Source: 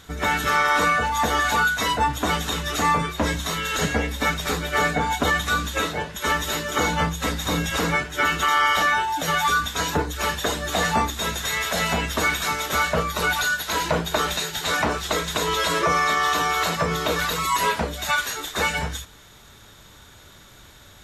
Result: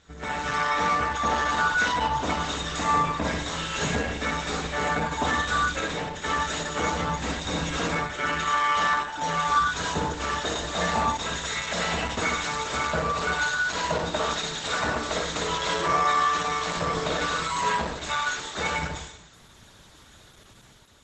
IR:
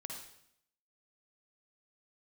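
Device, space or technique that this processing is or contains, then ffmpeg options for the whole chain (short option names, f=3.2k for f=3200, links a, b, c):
speakerphone in a meeting room: -filter_complex "[0:a]asplit=3[a][b][c];[a]afade=t=out:st=0.58:d=0.02[d];[b]lowpass=f=7.3k:w=0.5412,lowpass=f=7.3k:w=1.3066,afade=t=in:st=0.58:d=0.02,afade=t=out:st=2.47:d=0.02[e];[c]afade=t=in:st=2.47:d=0.02[f];[d][e][f]amix=inputs=3:normalize=0[g];[1:a]atrim=start_sample=2205[h];[g][h]afir=irnorm=-1:irlink=0,dynaudnorm=f=100:g=9:m=5dB,volume=-5dB" -ar 48000 -c:a libopus -b:a 12k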